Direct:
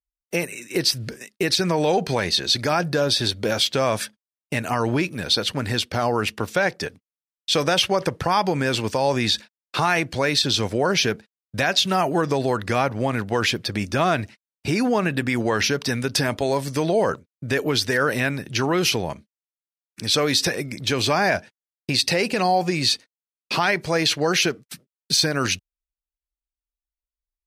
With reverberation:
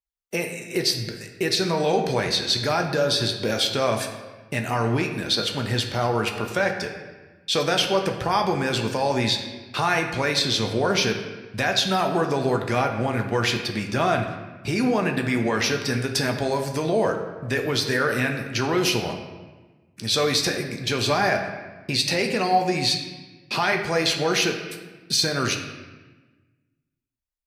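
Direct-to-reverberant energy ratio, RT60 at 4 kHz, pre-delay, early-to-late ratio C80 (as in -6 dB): 3.0 dB, 0.95 s, 5 ms, 8.5 dB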